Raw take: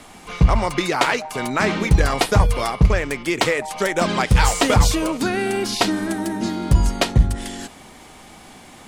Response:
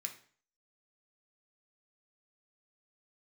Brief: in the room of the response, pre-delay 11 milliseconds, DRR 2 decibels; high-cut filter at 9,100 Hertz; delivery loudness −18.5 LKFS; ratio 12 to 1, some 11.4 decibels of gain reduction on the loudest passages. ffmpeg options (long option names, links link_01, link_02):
-filter_complex "[0:a]lowpass=9100,acompressor=threshold=-19dB:ratio=12,asplit=2[link_01][link_02];[1:a]atrim=start_sample=2205,adelay=11[link_03];[link_02][link_03]afir=irnorm=-1:irlink=0,volume=0dB[link_04];[link_01][link_04]amix=inputs=2:normalize=0,volume=5dB"